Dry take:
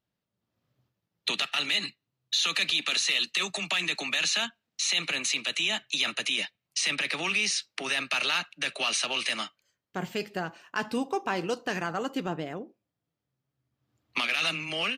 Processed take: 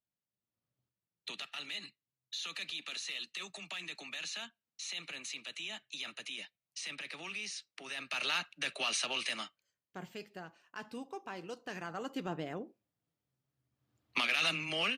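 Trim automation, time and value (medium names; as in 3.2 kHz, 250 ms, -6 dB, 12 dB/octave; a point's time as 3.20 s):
7.87 s -14.5 dB
8.31 s -6 dB
9.13 s -6 dB
10.29 s -14.5 dB
11.45 s -14.5 dB
12.61 s -3.5 dB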